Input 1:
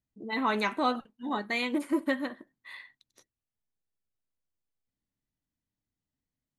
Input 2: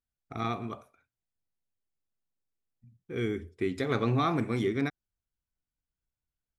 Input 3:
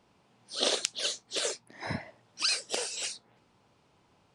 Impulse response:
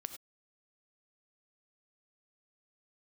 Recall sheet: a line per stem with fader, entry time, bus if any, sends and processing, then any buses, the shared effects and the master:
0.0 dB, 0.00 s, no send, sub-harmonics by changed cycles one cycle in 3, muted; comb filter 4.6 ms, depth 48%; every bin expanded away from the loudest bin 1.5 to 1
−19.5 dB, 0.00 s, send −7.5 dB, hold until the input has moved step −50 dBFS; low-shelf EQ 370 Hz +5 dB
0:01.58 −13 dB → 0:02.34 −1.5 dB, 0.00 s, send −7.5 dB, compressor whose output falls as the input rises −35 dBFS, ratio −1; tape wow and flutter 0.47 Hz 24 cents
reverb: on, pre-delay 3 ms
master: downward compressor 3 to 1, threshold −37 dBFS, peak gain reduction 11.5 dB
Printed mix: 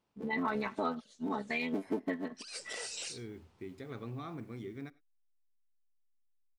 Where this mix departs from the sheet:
stem 1 0.0 dB → +10.5 dB
stem 3 −13.0 dB → −20.5 dB

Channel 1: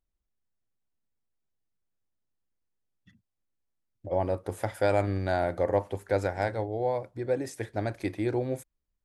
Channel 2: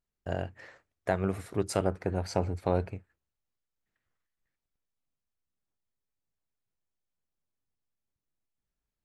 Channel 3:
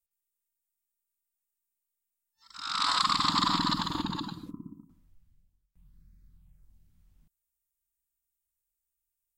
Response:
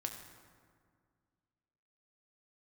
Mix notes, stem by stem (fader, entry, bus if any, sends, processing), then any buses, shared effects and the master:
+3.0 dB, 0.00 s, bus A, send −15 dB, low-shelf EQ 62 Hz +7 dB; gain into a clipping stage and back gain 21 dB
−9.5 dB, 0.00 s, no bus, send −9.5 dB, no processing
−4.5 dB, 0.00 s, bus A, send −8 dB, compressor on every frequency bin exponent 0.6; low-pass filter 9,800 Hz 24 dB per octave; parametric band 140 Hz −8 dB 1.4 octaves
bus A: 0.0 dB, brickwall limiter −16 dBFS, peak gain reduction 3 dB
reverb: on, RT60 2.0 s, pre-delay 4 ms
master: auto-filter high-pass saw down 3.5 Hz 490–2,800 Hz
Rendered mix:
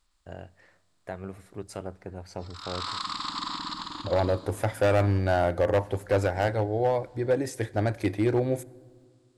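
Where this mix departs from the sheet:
stem 2: send −9.5 dB → −17.5 dB
stem 3 −4.5 dB → −11.5 dB
master: missing auto-filter high-pass saw down 3.5 Hz 490–2,800 Hz

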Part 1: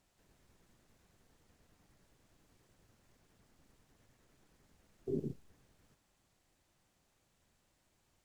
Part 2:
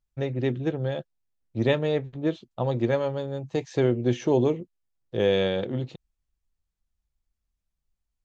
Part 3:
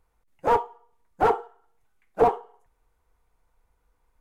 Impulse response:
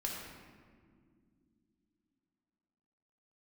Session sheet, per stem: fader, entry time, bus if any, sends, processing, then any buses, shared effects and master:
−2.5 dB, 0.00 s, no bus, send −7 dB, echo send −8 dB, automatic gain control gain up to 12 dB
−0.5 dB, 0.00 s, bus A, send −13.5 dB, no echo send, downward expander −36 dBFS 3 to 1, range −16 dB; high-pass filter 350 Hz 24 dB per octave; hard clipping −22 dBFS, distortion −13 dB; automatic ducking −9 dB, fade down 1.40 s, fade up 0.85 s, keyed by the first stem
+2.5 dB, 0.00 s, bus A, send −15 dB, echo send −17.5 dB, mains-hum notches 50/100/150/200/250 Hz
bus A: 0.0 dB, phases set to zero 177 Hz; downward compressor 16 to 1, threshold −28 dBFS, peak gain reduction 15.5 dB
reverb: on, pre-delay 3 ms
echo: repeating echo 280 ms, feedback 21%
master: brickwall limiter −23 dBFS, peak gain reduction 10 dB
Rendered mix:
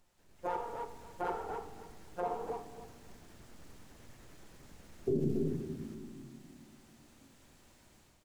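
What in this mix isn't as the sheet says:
stem 2: muted
stem 3 +2.5 dB → −4.5 dB

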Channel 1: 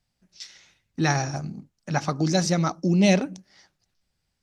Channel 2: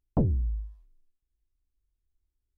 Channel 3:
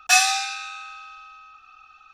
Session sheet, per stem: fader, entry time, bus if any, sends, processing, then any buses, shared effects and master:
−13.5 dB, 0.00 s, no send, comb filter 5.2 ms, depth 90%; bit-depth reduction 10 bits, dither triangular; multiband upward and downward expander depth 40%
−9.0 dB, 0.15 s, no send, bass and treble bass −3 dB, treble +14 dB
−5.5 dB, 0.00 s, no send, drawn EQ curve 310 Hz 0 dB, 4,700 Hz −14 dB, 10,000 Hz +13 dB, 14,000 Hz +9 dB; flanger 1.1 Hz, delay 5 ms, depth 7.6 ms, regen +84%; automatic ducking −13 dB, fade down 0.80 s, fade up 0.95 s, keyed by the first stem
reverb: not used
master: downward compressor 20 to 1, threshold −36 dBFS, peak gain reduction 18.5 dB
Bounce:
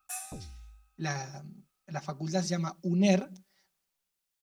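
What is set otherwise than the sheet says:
stem 2 −9.0 dB → −17.5 dB
stem 3 −5.5 dB → −13.5 dB
master: missing downward compressor 20 to 1, threshold −36 dBFS, peak gain reduction 18.5 dB

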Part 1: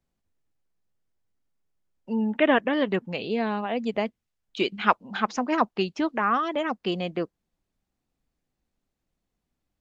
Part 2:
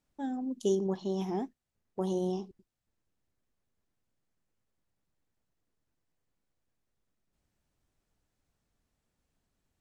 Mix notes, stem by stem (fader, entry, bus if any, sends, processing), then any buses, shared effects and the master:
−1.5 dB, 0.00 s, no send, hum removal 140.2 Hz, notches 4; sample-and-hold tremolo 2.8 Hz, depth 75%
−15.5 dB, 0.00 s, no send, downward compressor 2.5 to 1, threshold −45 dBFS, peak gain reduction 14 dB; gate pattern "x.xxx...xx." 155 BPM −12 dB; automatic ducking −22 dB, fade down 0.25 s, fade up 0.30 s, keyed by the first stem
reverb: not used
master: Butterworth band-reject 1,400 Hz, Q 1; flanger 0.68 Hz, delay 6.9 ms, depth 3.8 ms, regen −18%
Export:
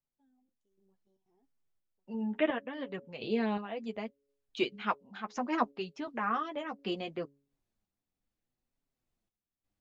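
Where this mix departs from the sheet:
stem 2 −15.5 dB → −27.0 dB
master: missing Butterworth band-reject 1,400 Hz, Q 1

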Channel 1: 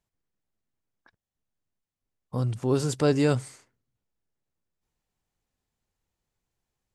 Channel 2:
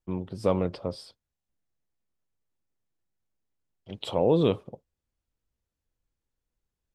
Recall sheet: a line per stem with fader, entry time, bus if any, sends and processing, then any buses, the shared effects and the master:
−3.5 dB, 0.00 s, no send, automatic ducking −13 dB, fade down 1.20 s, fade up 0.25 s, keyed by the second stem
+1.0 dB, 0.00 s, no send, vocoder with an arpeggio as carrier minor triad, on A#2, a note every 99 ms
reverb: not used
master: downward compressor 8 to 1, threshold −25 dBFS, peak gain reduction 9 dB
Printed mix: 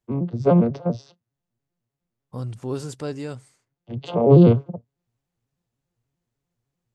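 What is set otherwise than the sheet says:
stem 2 +1.0 dB → +10.5 dB
master: missing downward compressor 8 to 1, threshold −25 dBFS, peak gain reduction 9 dB

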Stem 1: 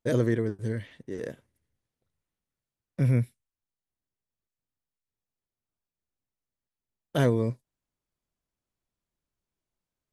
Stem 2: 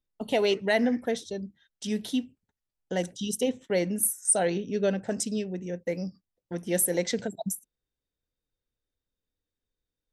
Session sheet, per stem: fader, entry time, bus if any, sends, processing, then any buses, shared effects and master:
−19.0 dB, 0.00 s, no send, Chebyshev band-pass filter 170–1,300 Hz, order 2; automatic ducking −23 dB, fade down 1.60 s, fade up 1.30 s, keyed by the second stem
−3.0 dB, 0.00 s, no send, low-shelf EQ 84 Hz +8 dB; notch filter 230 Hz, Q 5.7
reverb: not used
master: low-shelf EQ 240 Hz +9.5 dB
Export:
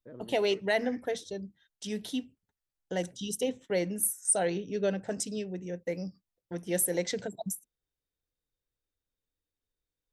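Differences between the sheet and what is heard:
stem 2: missing low-shelf EQ 84 Hz +8 dB
master: missing low-shelf EQ 240 Hz +9.5 dB

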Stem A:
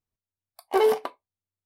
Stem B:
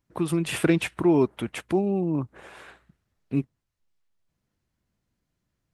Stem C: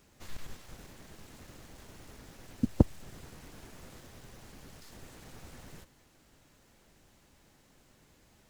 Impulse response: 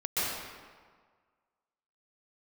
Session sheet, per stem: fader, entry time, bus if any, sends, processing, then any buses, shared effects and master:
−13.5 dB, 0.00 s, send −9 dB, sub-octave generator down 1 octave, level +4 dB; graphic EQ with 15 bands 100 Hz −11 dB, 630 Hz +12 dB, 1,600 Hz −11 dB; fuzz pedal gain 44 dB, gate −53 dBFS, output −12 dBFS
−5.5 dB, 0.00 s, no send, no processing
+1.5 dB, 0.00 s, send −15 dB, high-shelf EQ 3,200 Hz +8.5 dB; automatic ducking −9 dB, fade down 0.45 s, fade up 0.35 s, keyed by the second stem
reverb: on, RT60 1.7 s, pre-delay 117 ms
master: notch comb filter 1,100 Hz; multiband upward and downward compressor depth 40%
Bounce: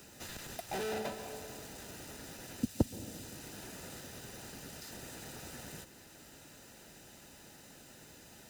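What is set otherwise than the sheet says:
stem A −13.5 dB → −20.0 dB
stem B: muted
reverb return −6.5 dB

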